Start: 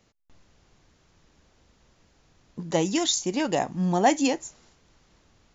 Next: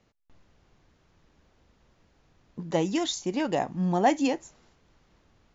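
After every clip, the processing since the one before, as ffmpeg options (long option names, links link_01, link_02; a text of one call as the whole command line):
ffmpeg -i in.wav -af "aemphasis=mode=reproduction:type=50fm,volume=-2dB" out.wav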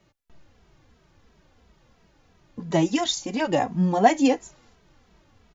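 ffmpeg -i in.wav -filter_complex "[0:a]asplit=2[link_01][link_02];[link_02]adelay=2.7,afreqshift=-2.9[link_03];[link_01][link_03]amix=inputs=2:normalize=1,volume=7.5dB" out.wav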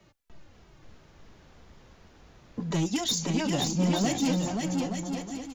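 ffmpeg -i in.wav -filter_complex "[0:a]acrossover=split=250|3000[link_01][link_02][link_03];[link_02]acompressor=threshold=-36dB:ratio=4[link_04];[link_01][link_04][link_03]amix=inputs=3:normalize=0,asoftclip=type=tanh:threshold=-24.5dB,asplit=2[link_05][link_06];[link_06]aecho=0:1:530|874.5|1098|1244|1339:0.631|0.398|0.251|0.158|0.1[link_07];[link_05][link_07]amix=inputs=2:normalize=0,volume=3dB" out.wav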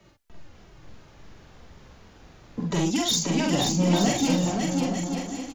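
ffmpeg -i in.wav -filter_complex "[0:a]asplit=2[link_01][link_02];[link_02]adelay=46,volume=-2.5dB[link_03];[link_01][link_03]amix=inputs=2:normalize=0,volume=2.5dB" out.wav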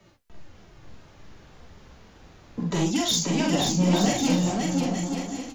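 ffmpeg -i in.wav -af "flanger=delay=10:depth=7.6:regen=-49:speed=1.7:shape=sinusoidal,volume=4dB" out.wav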